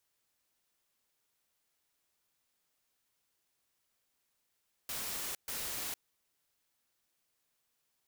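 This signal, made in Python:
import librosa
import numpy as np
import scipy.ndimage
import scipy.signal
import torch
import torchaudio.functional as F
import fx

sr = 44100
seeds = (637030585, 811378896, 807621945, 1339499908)

y = fx.noise_burst(sr, seeds[0], colour='white', on_s=0.46, off_s=0.13, bursts=2, level_db=-39.0)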